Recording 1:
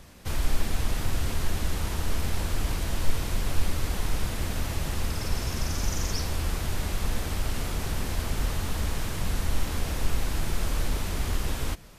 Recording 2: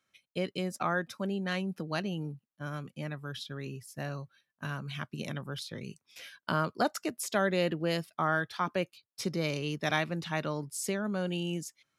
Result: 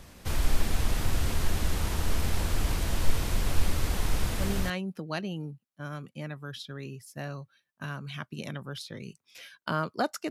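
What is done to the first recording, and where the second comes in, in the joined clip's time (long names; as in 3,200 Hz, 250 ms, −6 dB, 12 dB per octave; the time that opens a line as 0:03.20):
recording 1
0:04.55: continue with recording 2 from 0:01.36, crossfade 0.30 s logarithmic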